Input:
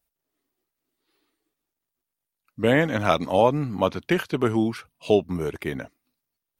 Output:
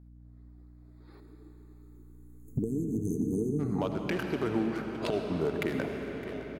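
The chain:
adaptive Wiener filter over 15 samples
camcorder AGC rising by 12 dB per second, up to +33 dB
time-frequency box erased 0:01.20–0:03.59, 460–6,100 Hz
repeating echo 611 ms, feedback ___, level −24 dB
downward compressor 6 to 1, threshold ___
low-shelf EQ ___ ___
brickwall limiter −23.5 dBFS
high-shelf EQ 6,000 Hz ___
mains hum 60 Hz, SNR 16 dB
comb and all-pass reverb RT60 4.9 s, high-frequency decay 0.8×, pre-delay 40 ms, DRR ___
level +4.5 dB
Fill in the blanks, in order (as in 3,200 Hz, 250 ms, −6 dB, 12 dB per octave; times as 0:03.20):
55%, −31 dBFS, 99 Hz, −10 dB, +2.5 dB, 3 dB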